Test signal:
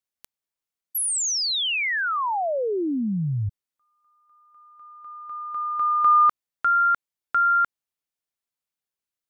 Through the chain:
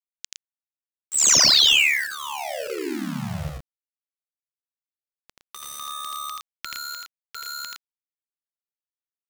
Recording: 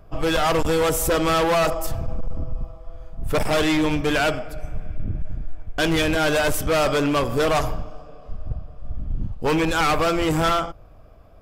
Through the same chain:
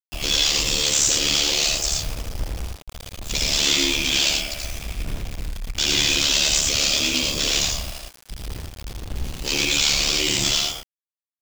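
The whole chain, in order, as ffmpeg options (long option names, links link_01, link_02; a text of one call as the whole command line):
ffmpeg -i in.wav -filter_complex "[0:a]equalizer=frequency=130:width=1.2:gain=-2.5,bandreject=frequency=450:width=12,acrossover=split=380|3800[link_01][link_02][link_03];[link_02]acompressor=threshold=-29dB:ratio=8:attack=2.3:release=84:knee=6:detection=peak[link_04];[link_01][link_04][link_03]amix=inputs=3:normalize=0,aexciter=amount=15.2:drive=3.7:freq=2200,aresample=16000,asoftclip=type=tanh:threshold=-11dB,aresample=44100,acrusher=bits=4:mix=0:aa=0.000001,aeval=exprs='val(0)*sin(2*PI*36*n/s)':channel_layout=same,aecho=1:1:81.63|113.7:0.794|0.562,volume=-3.5dB" out.wav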